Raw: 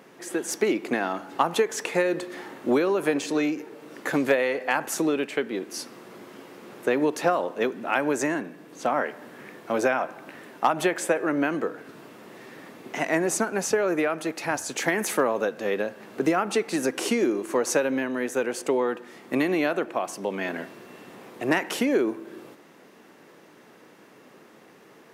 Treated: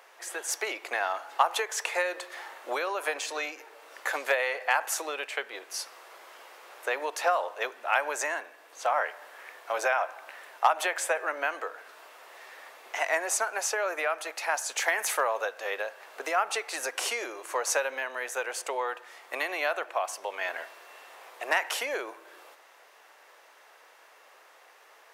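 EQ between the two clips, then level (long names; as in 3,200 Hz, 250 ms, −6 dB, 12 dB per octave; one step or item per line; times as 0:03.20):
high-pass filter 620 Hz 24 dB per octave
0.0 dB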